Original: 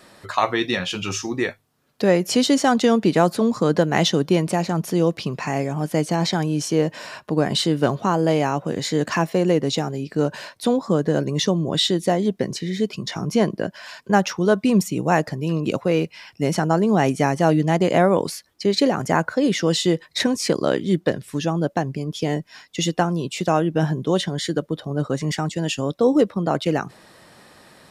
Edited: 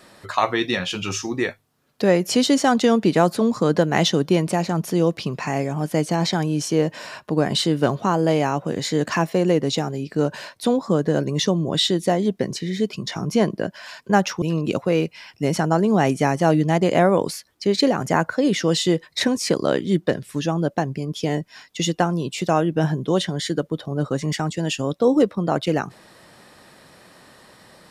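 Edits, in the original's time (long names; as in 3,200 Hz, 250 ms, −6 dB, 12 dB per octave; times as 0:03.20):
0:14.42–0:15.41: remove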